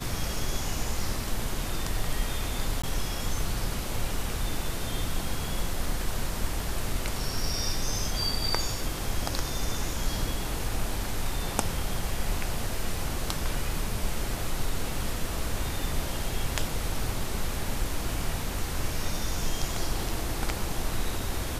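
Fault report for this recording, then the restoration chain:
2.82–2.83 gap 15 ms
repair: interpolate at 2.82, 15 ms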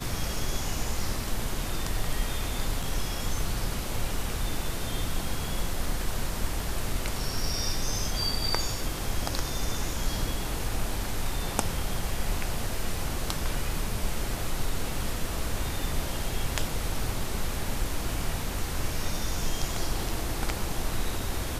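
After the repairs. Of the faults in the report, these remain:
none

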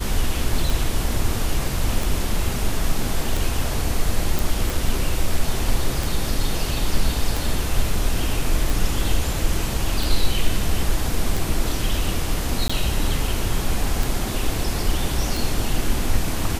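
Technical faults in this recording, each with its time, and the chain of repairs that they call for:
tick 45 rpm
4.39 pop
12.68–12.7 gap 15 ms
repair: de-click; interpolate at 12.68, 15 ms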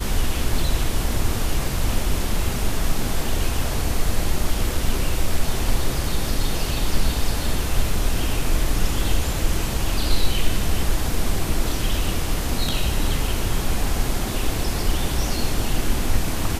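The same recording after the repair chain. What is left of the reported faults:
none

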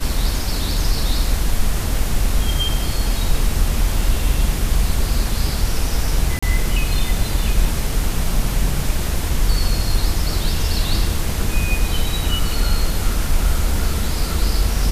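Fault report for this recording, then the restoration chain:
6.39–6.42 gap 35 ms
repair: interpolate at 6.39, 35 ms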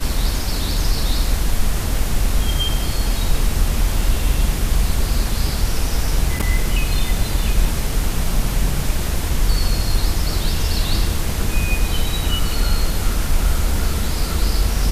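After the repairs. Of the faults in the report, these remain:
none

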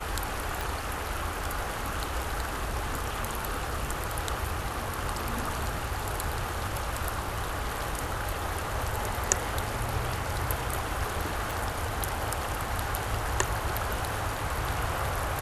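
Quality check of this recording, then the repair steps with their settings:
0.61 pop
11.51 pop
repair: de-click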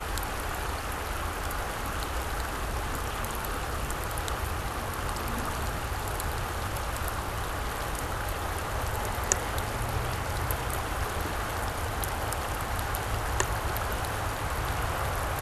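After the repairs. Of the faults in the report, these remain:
none

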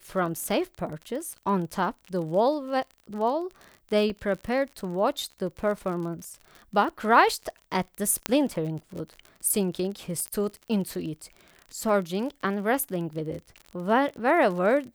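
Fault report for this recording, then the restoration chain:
crackle 43/s -34 dBFS
4.1 gap 2.5 ms
8.26 pop -6 dBFS
10.28 pop -19 dBFS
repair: de-click; interpolate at 4.1, 2.5 ms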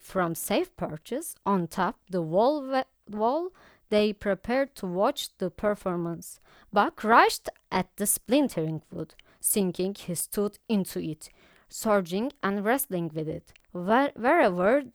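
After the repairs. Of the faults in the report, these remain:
none

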